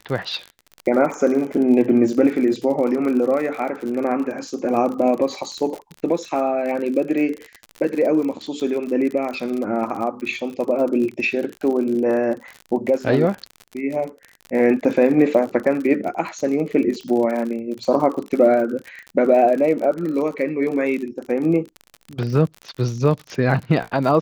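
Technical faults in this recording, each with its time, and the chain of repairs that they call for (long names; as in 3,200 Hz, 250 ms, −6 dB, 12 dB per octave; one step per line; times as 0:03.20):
surface crackle 51 per second −27 dBFS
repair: click removal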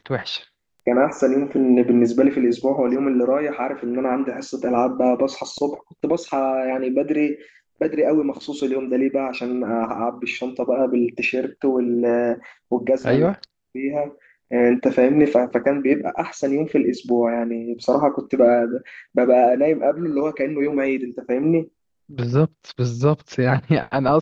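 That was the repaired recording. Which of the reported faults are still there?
none of them is left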